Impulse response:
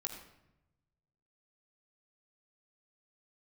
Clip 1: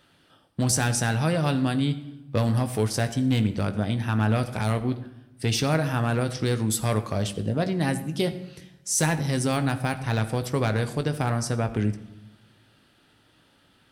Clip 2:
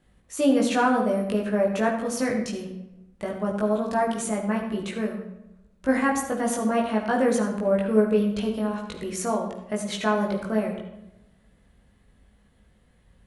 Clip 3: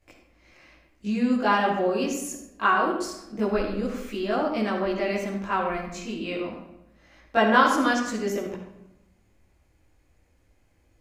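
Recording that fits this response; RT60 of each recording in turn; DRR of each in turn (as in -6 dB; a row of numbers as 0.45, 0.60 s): 2; 0.90, 0.90, 0.85 s; 8.5, -1.5, -7.0 dB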